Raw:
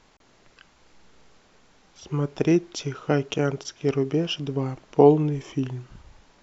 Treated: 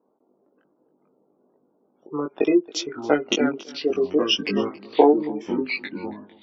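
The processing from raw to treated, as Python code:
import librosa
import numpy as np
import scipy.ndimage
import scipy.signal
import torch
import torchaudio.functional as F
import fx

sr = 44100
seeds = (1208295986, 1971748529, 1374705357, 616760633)

y = scipy.signal.sosfilt(scipy.signal.butter(4, 270.0, 'highpass', fs=sr, output='sos'), x)
y = fx.env_lowpass(y, sr, base_hz=390.0, full_db=-22.5)
y = fx.spec_gate(y, sr, threshold_db=-25, keep='strong')
y = fx.high_shelf(y, sr, hz=2600.0, db=9.5)
y = fx.transient(y, sr, attack_db=3, sustain_db=-7)
y = fx.echo_pitch(y, sr, ms=284, semitones=-4, count=2, db_per_echo=-6.0)
y = fx.doubler(y, sr, ms=20.0, db=-3.5)
y = y + 10.0 ** (-21.5 / 20.0) * np.pad(y, (int(275 * sr / 1000.0), 0))[:len(y)]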